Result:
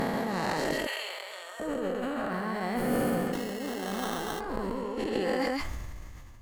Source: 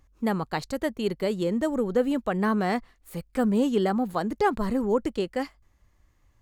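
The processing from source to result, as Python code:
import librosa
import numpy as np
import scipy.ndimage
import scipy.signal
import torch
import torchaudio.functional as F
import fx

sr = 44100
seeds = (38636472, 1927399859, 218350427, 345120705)

y = fx.spec_swells(x, sr, rise_s=2.74)
y = fx.over_compress(y, sr, threshold_db=-28.0, ratio=-1.0)
y = fx.highpass(y, sr, hz=830.0, slope=24, at=(0.73, 1.6))
y = y + 10.0 ** (-4.0 / 20.0) * np.pad(y, (int(137 * sr / 1000.0), 0))[:len(y)]
y = fx.sample_hold(y, sr, seeds[0], rate_hz=2400.0, jitter_pct=0, at=(3.32, 4.39), fade=0.02)
y = fx.sustainer(y, sr, db_per_s=23.0)
y = F.gain(torch.from_numpy(y), -5.5).numpy()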